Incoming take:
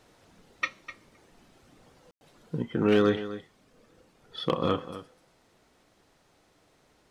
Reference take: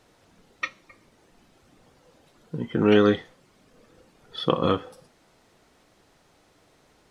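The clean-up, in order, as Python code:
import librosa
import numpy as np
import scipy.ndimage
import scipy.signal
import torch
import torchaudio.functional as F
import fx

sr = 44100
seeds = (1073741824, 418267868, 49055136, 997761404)

y = fx.fix_declip(x, sr, threshold_db=-14.0)
y = fx.fix_ambience(y, sr, seeds[0], print_start_s=6.05, print_end_s=6.55, start_s=2.11, end_s=2.21)
y = fx.fix_echo_inverse(y, sr, delay_ms=252, level_db=-14.0)
y = fx.fix_level(y, sr, at_s=2.62, step_db=4.0)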